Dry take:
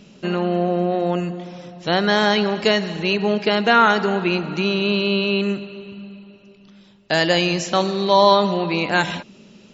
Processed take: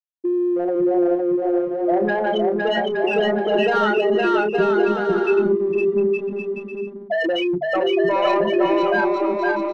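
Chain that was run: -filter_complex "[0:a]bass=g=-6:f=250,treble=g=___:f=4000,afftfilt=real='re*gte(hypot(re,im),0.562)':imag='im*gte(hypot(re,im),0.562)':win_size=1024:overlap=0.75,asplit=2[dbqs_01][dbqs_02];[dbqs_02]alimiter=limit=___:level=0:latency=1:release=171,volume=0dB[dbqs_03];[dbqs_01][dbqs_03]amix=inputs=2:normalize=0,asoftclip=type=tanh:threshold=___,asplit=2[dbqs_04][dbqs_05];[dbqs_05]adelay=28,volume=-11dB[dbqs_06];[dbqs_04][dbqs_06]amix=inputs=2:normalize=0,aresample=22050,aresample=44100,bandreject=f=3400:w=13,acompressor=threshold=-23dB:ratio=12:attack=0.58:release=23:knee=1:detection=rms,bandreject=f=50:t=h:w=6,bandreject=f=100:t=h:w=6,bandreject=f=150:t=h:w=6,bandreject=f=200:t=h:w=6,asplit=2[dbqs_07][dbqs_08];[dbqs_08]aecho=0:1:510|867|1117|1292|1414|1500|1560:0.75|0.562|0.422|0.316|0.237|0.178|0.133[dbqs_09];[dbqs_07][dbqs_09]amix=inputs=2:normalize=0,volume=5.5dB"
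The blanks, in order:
0, -11.5dB, -8.5dB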